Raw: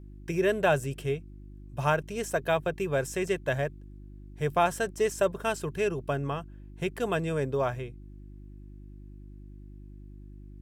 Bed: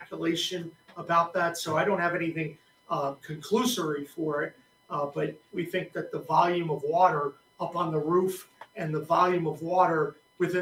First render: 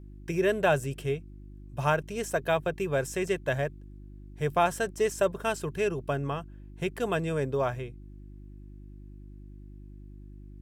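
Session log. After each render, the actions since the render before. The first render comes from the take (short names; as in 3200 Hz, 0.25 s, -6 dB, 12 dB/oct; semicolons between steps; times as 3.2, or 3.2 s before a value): nothing audible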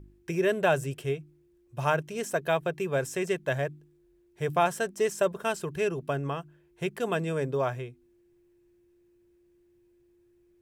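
de-hum 50 Hz, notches 6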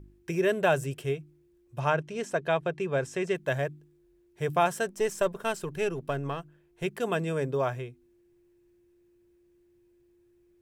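1.79–3.35 air absorption 65 m; 4.89–6.84 half-wave gain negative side -3 dB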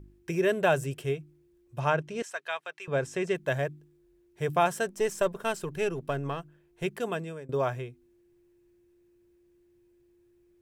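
2.22–2.88 HPF 1200 Hz; 6.92–7.49 fade out, to -20.5 dB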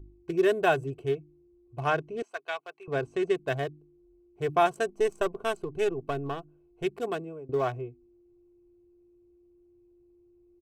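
Wiener smoothing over 25 samples; comb 2.7 ms, depth 55%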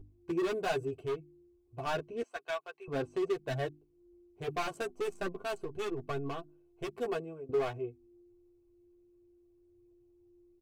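hard clip -26.5 dBFS, distortion -7 dB; chorus voices 4, 0.29 Hz, delay 10 ms, depth 2.4 ms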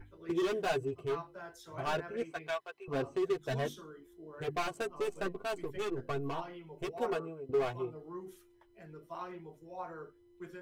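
add bed -20.5 dB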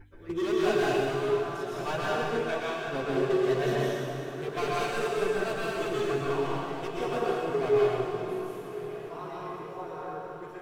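diffused feedback echo 1.075 s, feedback 50%, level -14 dB; plate-style reverb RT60 2.5 s, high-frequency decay 0.9×, pre-delay 0.105 s, DRR -6.5 dB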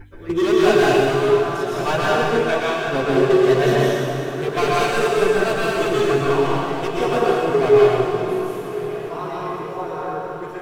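gain +11 dB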